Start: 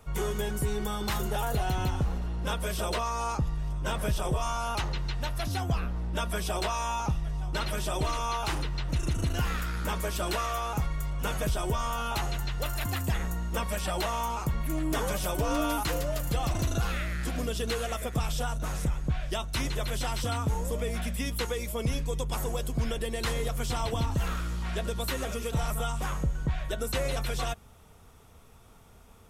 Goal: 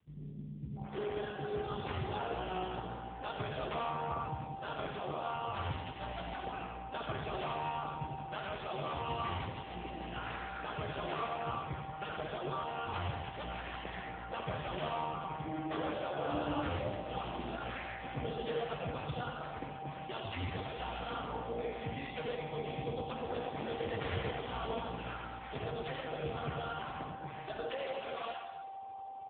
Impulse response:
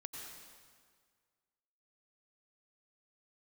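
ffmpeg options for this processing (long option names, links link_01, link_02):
-filter_complex "[0:a]asplit=3[link_01][link_02][link_03];[link_01]afade=type=out:start_time=11.16:duration=0.02[link_04];[link_02]highpass=68,afade=type=in:start_time=11.16:duration=0.02,afade=type=out:start_time=11.56:duration=0.02[link_05];[link_03]afade=type=in:start_time=11.56:duration=0.02[link_06];[link_04][link_05][link_06]amix=inputs=3:normalize=0,adynamicequalizer=threshold=0.00631:dfrequency=190:dqfactor=1.2:tfrequency=190:tqfactor=1.2:attack=5:release=100:ratio=0.375:range=1.5:mode=cutabove:tftype=bell,aeval=exprs='val(0)+0.00891*sin(2*PI*780*n/s)':channel_layout=same,asettb=1/sr,asplit=3[link_07][link_08][link_09];[link_07]atrim=end=22.504[link_10];[link_08]atrim=start=22.5:end=23.6,asetpts=PTS-STARTPTS,afade=type=in:duration=0.004:curve=qsin,afade=type=out:start_time=1.096:duration=0.004:curve=qsin,aeval=exprs='0.112*(cos(1*acos(clip(val(0)/0.112,-1,1)))-cos(1*PI/2))+0.00158*(cos(2*acos(clip(val(0)/0.112,-1,1)))-cos(2*PI/2))+0.000794*(cos(4*acos(clip(val(0)/0.112,-1,1)))-cos(4*PI/2))+0.00112*(cos(5*acos(clip(val(0)/0.112,-1,1)))-cos(5*PI/2))+0.0224*(cos(8*acos(clip(val(0)/0.112,-1,1)))-cos(8*PI/2))':channel_layout=same[link_11];[link_09]atrim=start=23.596[link_12];[link_10][link_11]acrossfade=duration=0.004:curve1=hsin:curve2=qsin[link_13];[link_13][link_12]acrossfade=duration=0.004:curve1=qsin:curve2=hsin,acrusher=bits=10:mix=0:aa=0.000001,acrossover=split=210[link_14][link_15];[link_15]adelay=770[link_16];[link_14][link_16]amix=inputs=2:normalize=0[link_17];[1:a]atrim=start_sample=2205,asetrate=70560,aresample=44100[link_18];[link_17][link_18]afir=irnorm=-1:irlink=0,volume=5dB" -ar 8000 -c:a libopencore_amrnb -b:a 5150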